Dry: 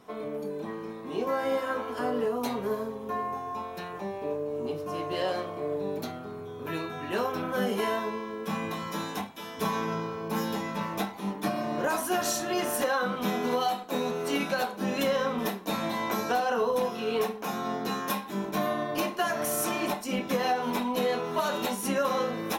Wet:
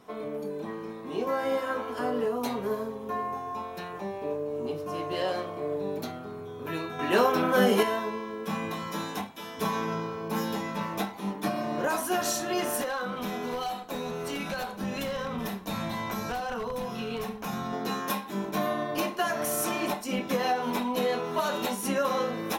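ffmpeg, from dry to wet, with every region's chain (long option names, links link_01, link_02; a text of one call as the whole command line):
ffmpeg -i in.wav -filter_complex "[0:a]asettb=1/sr,asplit=3[link_01][link_02][link_03];[link_01]atrim=end=6.994[link_04];[link_02]atrim=start=6.99:end=7.83,asetpts=PTS-STARTPTS,afade=type=in:duration=0.004:curve=qsin,afade=type=out:start_time=0.836:duration=0.004:curve=qsin,highpass=160,acontrast=84[link_05];[link_03]atrim=start=7.826[link_06];[link_04][link_05]acrossfade=duration=0.004:curve1=hsin:curve2=qsin[link_07];[link_07][link_06]acrossfade=duration=0.004:curve1=qsin:curve2=hsin,asettb=1/sr,asplit=3[link_08][link_09][link_10];[link_08]atrim=end=12.814[link_11];[link_09]atrim=start=12.81:end=17.73,asetpts=PTS-STARTPTS,afade=type=in:duration=0.004:curve=qsin,afade=type=out:start_time=4.916:duration=0.004:curve=qsin,aeval=exprs='0.0944*(abs(mod(val(0)/0.0944+3,4)-2)-1)':channel_layout=same,acompressor=threshold=-29dB:ratio=3:attack=3.2:release=140:knee=1:detection=peak,asubboost=boost=7.5:cutoff=130[link_12];[link_10]atrim=start=17.726[link_13];[link_11][link_12]acrossfade=duration=0.004:curve1=hsin:curve2=qsin[link_14];[link_14][link_13]acrossfade=duration=0.004:curve1=qsin:curve2=hsin" out.wav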